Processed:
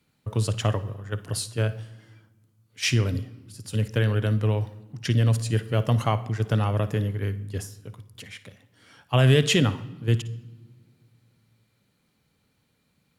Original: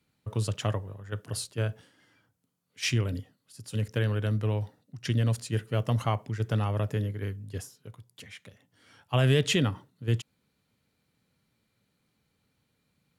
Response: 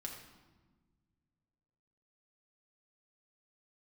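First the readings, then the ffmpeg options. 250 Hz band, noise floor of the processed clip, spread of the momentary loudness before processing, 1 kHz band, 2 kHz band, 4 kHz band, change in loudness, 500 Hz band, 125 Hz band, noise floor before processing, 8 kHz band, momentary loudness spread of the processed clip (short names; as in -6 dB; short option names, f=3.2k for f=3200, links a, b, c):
+4.5 dB, -70 dBFS, 20 LU, +4.5 dB, +4.5 dB, +4.5 dB, +5.0 dB, +4.5 dB, +5.0 dB, -76 dBFS, +4.5 dB, 19 LU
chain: -filter_complex "[0:a]asplit=2[a][b];[1:a]atrim=start_sample=2205,adelay=55[c];[b][c]afir=irnorm=-1:irlink=0,volume=-12dB[d];[a][d]amix=inputs=2:normalize=0,volume=4.5dB"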